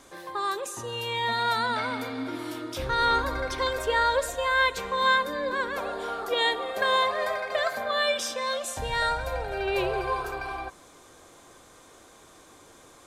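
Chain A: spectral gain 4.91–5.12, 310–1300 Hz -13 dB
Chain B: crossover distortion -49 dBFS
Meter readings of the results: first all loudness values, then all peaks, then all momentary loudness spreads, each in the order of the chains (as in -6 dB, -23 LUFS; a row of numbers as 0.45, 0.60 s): -27.5, -27.5 LUFS; -11.0, -11.0 dBFS; 10, 11 LU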